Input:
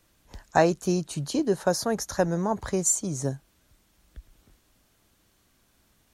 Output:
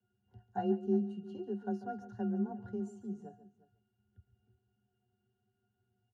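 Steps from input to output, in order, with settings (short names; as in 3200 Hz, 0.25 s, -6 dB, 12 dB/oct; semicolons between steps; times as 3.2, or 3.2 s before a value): octave resonator F, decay 0.2 s; echo 0.356 s -19 dB; frequency shift +28 Hz; echo 0.142 s -14.5 dB; gain -2 dB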